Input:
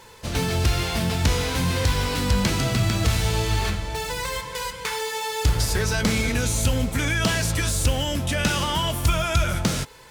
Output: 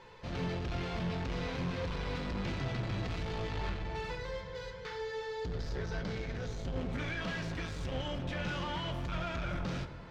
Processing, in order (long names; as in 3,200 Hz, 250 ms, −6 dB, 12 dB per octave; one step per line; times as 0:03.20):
0:04.15–0:06.76: graphic EQ with 15 bands 250 Hz −9 dB, 1,000 Hz −8 dB, 2,500 Hz −9 dB, 10,000 Hz −12 dB
soft clipping −27.5 dBFS, distortion −7 dB
high-frequency loss of the air 210 metres
bucket-brigade delay 364 ms, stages 4,096, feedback 63%, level −16.5 dB
convolution reverb RT60 0.85 s, pre-delay 6 ms, DRR 6 dB
level −6 dB